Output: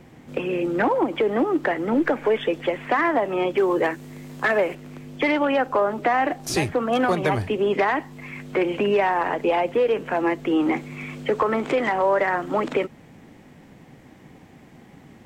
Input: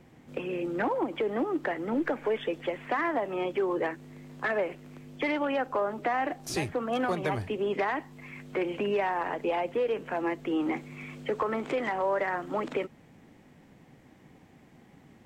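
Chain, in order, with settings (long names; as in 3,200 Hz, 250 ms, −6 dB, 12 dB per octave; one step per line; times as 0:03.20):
0:03.57–0:04.75: high-shelf EQ 5,600 Hz +8 dB
level +8 dB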